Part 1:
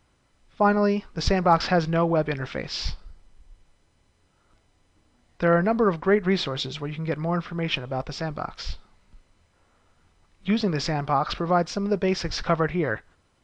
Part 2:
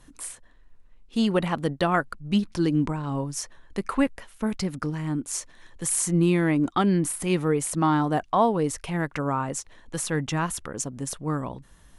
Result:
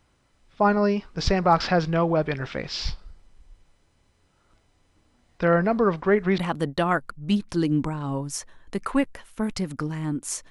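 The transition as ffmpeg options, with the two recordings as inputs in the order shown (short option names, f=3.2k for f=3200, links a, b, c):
-filter_complex "[0:a]apad=whole_dur=10.5,atrim=end=10.5,atrim=end=6.382[a];[1:a]atrim=start=1.408:end=5.53[b];[a][b]acrossfade=d=0.004:c1=hsin:c2=hsin"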